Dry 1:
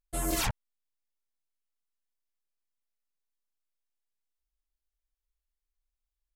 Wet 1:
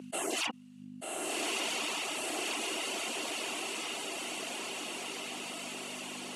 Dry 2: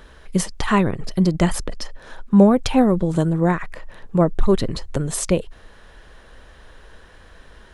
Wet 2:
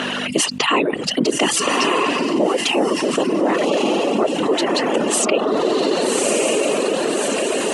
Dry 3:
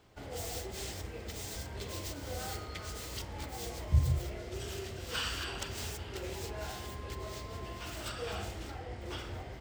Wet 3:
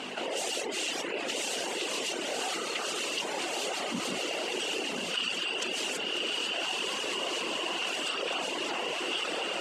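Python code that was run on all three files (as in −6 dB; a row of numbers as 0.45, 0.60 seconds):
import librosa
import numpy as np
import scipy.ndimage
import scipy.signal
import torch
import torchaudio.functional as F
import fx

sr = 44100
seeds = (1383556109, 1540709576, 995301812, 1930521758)

p1 = fx.notch(x, sr, hz=5200.0, q=23.0)
p2 = fx.dynamic_eq(p1, sr, hz=1600.0, q=5.1, threshold_db=-50.0, ratio=4.0, max_db=-6)
p3 = fx.whisperise(p2, sr, seeds[0])
p4 = scipy.signal.sosfilt(scipy.signal.butter(4, 10000.0, 'lowpass', fs=sr, output='sos'), p3)
p5 = p4 + fx.echo_diffused(p4, sr, ms=1204, feedback_pct=40, wet_db=-3.5, dry=0)
p6 = fx.add_hum(p5, sr, base_hz=50, snr_db=15)
p7 = fx.dereverb_blind(p6, sr, rt60_s=0.58)
p8 = scipy.signal.sosfilt(scipy.signal.butter(4, 300.0, 'highpass', fs=sr, output='sos'), p7)
p9 = fx.rider(p8, sr, range_db=5, speed_s=0.5)
p10 = fx.peak_eq(p9, sr, hz=2800.0, db=14.0, octaves=0.25)
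y = fx.env_flatten(p10, sr, amount_pct=70)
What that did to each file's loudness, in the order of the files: −4.0, +1.5, +7.5 LU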